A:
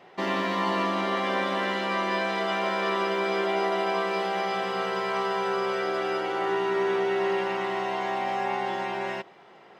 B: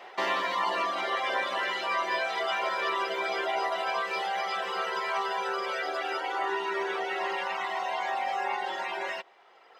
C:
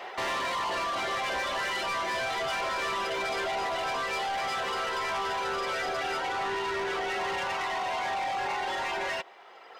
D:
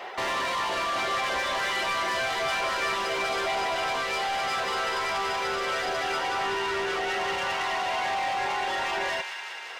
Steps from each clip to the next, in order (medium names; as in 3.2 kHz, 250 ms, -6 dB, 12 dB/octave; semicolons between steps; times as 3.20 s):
reverb removal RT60 1.9 s; high-pass 570 Hz 12 dB/octave; in parallel at +3 dB: compression, threshold -41 dBFS, peak gain reduction 13.5 dB
in parallel at +1.5 dB: peak limiter -25 dBFS, peak gain reduction 8.5 dB; on the sum: saturation -28 dBFS, distortion -9 dB
feedback echo behind a high-pass 190 ms, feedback 81%, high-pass 1.5 kHz, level -7 dB; trim +2 dB